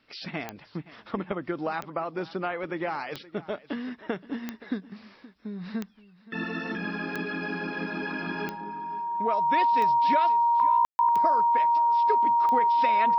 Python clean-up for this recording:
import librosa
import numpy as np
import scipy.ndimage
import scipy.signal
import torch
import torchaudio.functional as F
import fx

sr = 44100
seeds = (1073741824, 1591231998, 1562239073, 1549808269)

y = fx.fix_declick_ar(x, sr, threshold=10.0)
y = fx.notch(y, sr, hz=940.0, q=30.0)
y = fx.fix_ambience(y, sr, seeds[0], print_start_s=5.83, print_end_s=6.33, start_s=10.85, end_s=10.99)
y = fx.fix_echo_inverse(y, sr, delay_ms=522, level_db=-19.0)